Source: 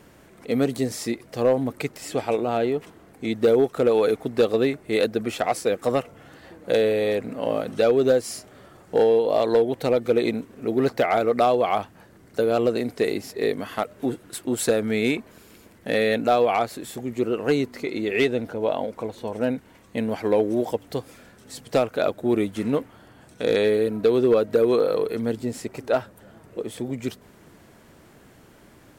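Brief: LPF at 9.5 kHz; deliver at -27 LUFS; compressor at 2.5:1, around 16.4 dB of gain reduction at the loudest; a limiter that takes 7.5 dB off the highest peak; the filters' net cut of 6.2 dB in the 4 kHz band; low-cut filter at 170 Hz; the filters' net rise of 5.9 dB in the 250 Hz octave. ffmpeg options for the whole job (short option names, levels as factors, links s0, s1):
-af "highpass=170,lowpass=9500,equalizer=f=250:t=o:g=8,equalizer=f=4000:t=o:g=-7.5,acompressor=threshold=0.0126:ratio=2.5,volume=3.35,alimiter=limit=0.158:level=0:latency=1"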